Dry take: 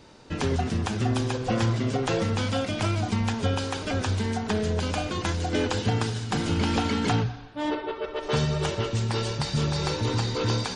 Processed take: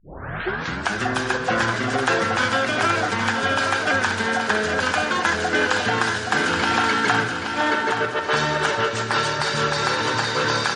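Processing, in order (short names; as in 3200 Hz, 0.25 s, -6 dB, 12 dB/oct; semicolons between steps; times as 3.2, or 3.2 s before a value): tape start at the beginning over 0.95 s; HPF 460 Hz 6 dB/oct; in parallel at -1 dB: limiter -22 dBFS, peak gain reduction 9.5 dB; on the sum: bell 1600 Hz +9.5 dB 0.44 oct; on a send: feedback echo 0.825 s, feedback 43%, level -6 dB; on the sum: dynamic EQ 1200 Hz, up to +5 dB, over -38 dBFS, Q 0.8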